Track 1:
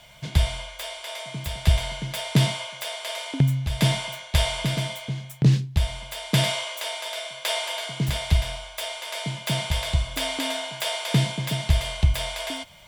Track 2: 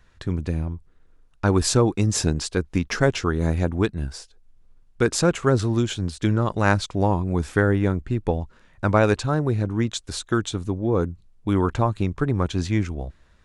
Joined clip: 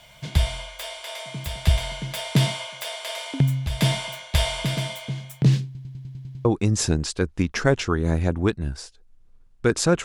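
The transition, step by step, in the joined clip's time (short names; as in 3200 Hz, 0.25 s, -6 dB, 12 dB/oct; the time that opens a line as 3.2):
track 1
5.65 stutter in place 0.10 s, 8 plays
6.45 switch to track 2 from 1.81 s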